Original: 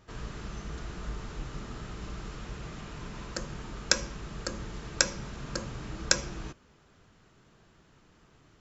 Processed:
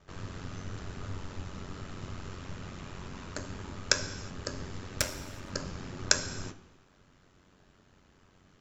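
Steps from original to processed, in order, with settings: 4.99–5.50 s: comb filter that takes the minimum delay 3.3 ms; ring modulator 46 Hz; gated-style reverb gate 400 ms falling, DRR 9.5 dB; trim +1 dB

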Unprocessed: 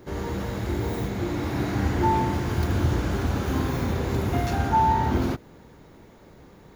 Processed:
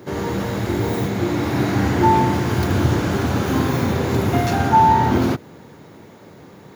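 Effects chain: high-pass 93 Hz 24 dB/octave; trim +7.5 dB

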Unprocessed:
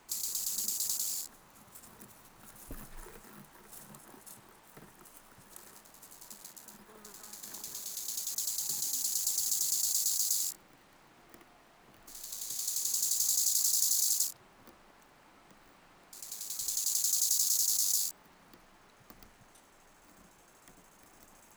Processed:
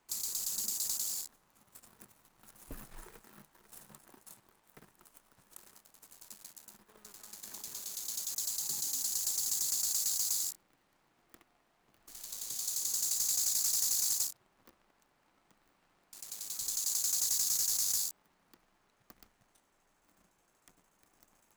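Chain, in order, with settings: waveshaping leveller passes 2; trim -8.5 dB

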